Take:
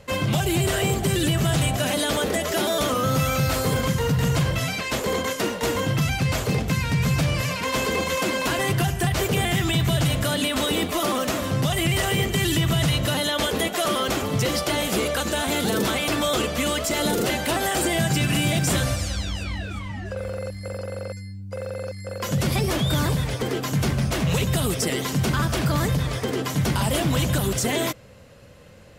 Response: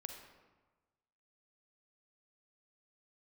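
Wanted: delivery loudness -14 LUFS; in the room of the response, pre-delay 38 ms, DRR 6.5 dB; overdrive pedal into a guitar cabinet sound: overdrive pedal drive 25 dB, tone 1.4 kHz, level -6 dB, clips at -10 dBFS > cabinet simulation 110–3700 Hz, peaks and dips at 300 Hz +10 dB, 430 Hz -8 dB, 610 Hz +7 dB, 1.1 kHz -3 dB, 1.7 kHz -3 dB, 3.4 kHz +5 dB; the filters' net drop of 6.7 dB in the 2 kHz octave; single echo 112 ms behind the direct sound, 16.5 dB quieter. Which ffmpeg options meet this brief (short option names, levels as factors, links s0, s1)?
-filter_complex "[0:a]equalizer=f=2000:t=o:g=-7.5,aecho=1:1:112:0.15,asplit=2[s0][s1];[1:a]atrim=start_sample=2205,adelay=38[s2];[s1][s2]afir=irnorm=-1:irlink=0,volume=0.708[s3];[s0][s3]amix=inputs=2:normalize=0,asplit=2[s4][s5];[s5]highpass=f=720:p=1,volume=17.8,asoftclip=type=tanh:threshold=0.316[s6];[s4][s6]amix=inputs=2:normalize=0,lowpass=f=1400:p=1,volume=0.501,highpass=110,equalizer=f=300:t=q:w=4:g=10,equalizer=f=430:t=q:w=4:g=-8,equalizer=f=610:t=q:w=4:g=7,equalizer=f=1100:t=q:w=4:g=-3,equalizer=f=1700:t=q:w=4:g=-3,equalizer=f=3400:t=q:w=4:g=5,lowpass=f=3700:w=0.5412,lowpass=f=3700:w=1.3066,volume=1.58"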